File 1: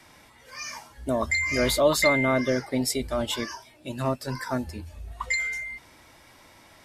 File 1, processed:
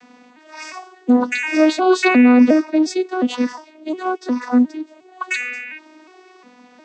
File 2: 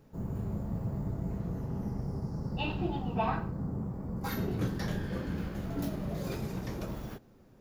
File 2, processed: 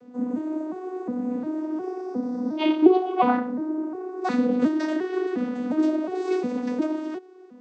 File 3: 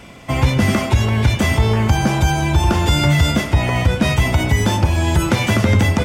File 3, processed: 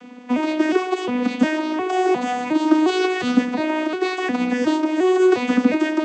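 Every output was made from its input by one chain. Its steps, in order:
arpeggiated vocoder major triad, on B3, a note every 0.357 s; normalise peaks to -3 dBFS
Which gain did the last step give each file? +10.5, +11.5, -1.5 dB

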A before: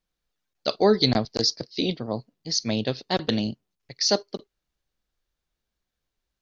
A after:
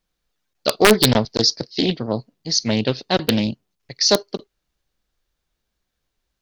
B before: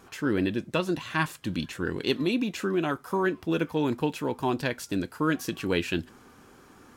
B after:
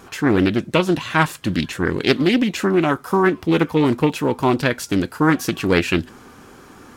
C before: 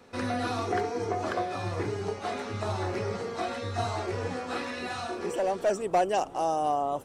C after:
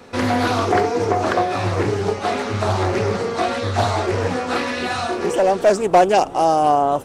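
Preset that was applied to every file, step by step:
wrapped overs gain 8.5 dB; Doppler distortion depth 0.3 ms; match loudness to -19 LUFS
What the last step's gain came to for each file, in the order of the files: +6.0, +9.5, +11.5 dB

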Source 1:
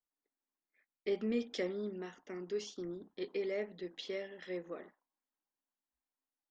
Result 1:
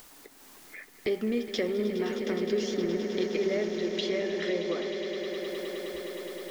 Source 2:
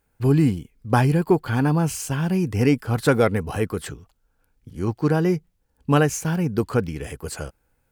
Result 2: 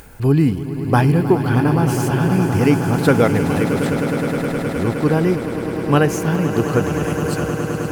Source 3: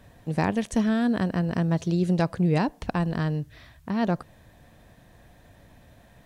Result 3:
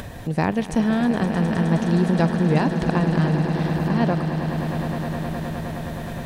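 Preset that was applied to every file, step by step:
dynamic EQ 7400 Hz, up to -6 dB, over -53 dBFS, Q 1.5; upward compressor, threshold -26 dBFS; swelling echo 0.104 s, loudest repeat 8, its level -12.5 dB; gain +3 dB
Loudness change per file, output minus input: +9.5, +4.0, +4.0 LU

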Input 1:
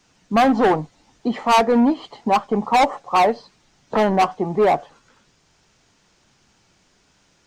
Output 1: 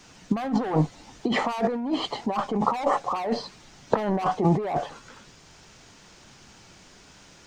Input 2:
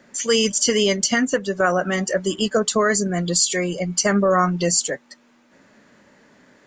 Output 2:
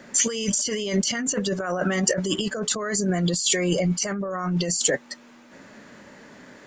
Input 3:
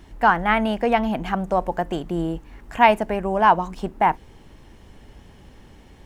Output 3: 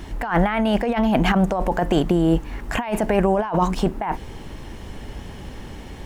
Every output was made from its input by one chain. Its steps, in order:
negative-ratio compressor -26 dBFS, ratio -1; normalise peaks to -6 dBFS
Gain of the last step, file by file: +1.0, +1.0, +6.0 dB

